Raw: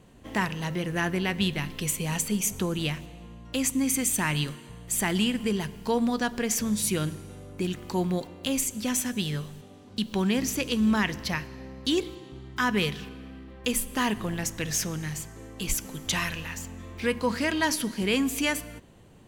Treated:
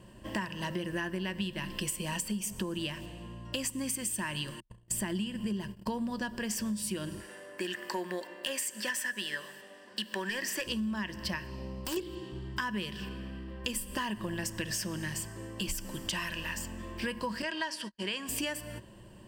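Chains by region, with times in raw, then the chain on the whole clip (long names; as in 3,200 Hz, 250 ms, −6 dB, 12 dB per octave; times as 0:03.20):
0:04.60–0:06.37: noise gate −41 dBFS, range −55 dB + low-shelf EQ 440 Hz +5.5 dB
0:07.20–0:10.67: high-pass filter 430 Hz + parametric band 1,800 Hz +13.5 dB 0.43 octaves + gain into a clipping stage and back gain 22.5 dB
0:11.50–0:11.97: parametric band 1,700 Hz −12.5 dB 0.36 octaves + downward compressor, threshold −31 dBFS + wrap-around overflow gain 28 dB
0:17.42–0:18.29: high-pass filter 830 Hz 6 dB per octave + noise gate −39 dBFS, range −49 dB + high-frequency loss of the air 58 metres
whole clip: EQ curve with evenly spaced ripples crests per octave 1.3, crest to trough 10 dB; downward compressor 10 to 1, threshold −31 dBFS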